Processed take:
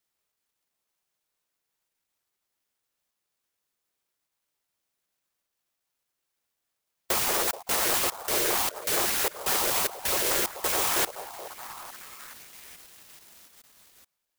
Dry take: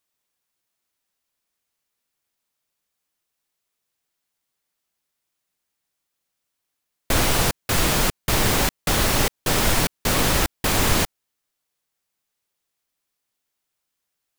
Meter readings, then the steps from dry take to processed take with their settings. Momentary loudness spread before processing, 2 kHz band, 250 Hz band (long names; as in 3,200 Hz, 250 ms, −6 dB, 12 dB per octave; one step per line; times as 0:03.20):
3 LU, −6.5 dB, −13.0 dB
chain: time-frequency cells dropped at random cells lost 38%
Chebyshev high-pass filter 340 Hz, order 6
high-shelf EQ 7,800 Hz +9 dB
on a send: echo through a band-pass that steps 428 ms, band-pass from 640 Hz, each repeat 0.7 octaves, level −7 dB
on the sum: converter with an unsteady clock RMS 0.089 ms
level −3 dB